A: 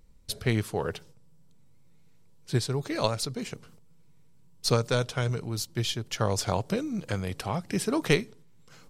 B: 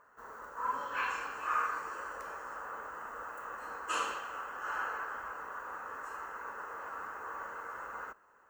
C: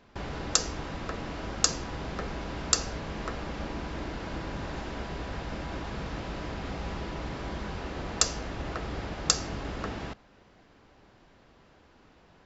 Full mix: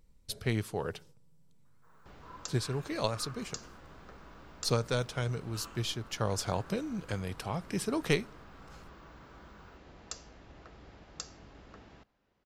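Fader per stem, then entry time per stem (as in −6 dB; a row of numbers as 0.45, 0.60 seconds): −5.0, −17.0, −18.0 decibels; 0.00, 1.65, 1.90 seconds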